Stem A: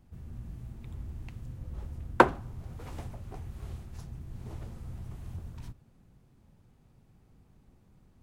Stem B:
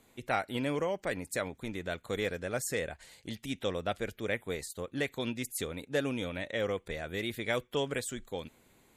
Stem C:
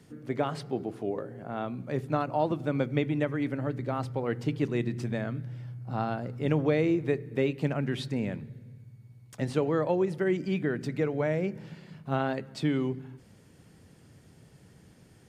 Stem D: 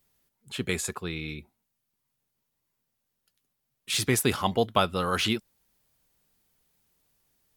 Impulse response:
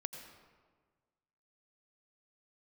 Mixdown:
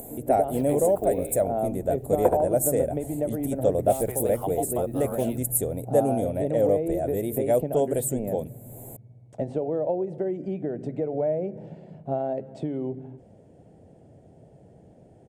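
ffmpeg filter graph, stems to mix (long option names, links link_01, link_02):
-filter_complex "[0:a]adelay=50,volume=-8dB,asplit=2[link_01][link_02];[link_02]volume=-5dB[link_03];[1:a]acompressor=mode=upward:threshold=-39dB:ratio=2.5,bass=frequency=250:gain=5,treble=frequency=4000:gain=6,volume=3dB[link_04];[2:a]lowpass=frequency=4500:width=0.5412,lowpass=frequency=4500:width=1.3066,crystalizer=i=3:c=0,volume=2dB[link_05];[3:a]highpass=780,acrusher=bits=9:mix=0:aa=0.000001,volume=2dB[link_06];[link_05][link_06]amix=inputs=2:normalize=0,acompressor=threshold=-28dB:ratio=10,volume=0dB[link_07];[link_03]aecho=0:1:75|150|225|300|375:1|0.38|0.144|0.0549|0.0209[link_08];[link_01][link_04][link_07][link_08]amix=inputs=4:normalize=0,firequalizer=gain_entry='entry(160,0);entry(460,6);entry(660,12);entry(1100,-13);entry(4600,-23);entry(8200,2);entry(14000,10)':delay=0.05:min_phase=1"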